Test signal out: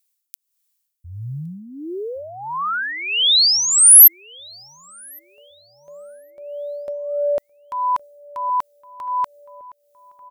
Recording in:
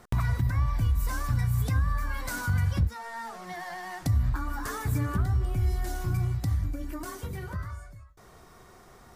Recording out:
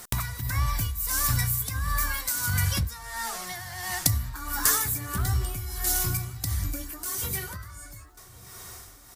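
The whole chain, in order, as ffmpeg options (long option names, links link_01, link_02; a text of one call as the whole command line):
ffmpeg -i in.wav -filter_complex "[0:a]tremolo=f=1.5:d=0.71,crystalizer=i=9.5:c=0,asplit=2[link_01][link_02];[link_02]adelay=1114,lowpass=frequency=1900:poles=1,volume=-19dB,asplit=2[link_03][link_04];[link_04]adelay=1114,lowpass=frequency=1900:poles=1,volume=0.51,asplit=2[link_05][link_06];[link_06]adelay=1114,lowpass=frequency=1900:poles=1,volume=0.51,asplit=2[link_07][link_08];[link_08]adelay=1114,lowpass=frequency=1900:poles=1,volume=0.51[link_09];[link_01][link_03][link_05][link_07][link_09]amix=inputs=5:normalize=0" out.wav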